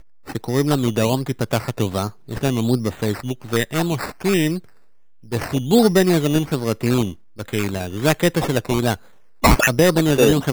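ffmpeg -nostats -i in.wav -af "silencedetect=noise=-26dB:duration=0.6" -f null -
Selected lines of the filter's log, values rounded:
silence_start: 4.58
silence_end: 5.32 | silence_duration: 0.74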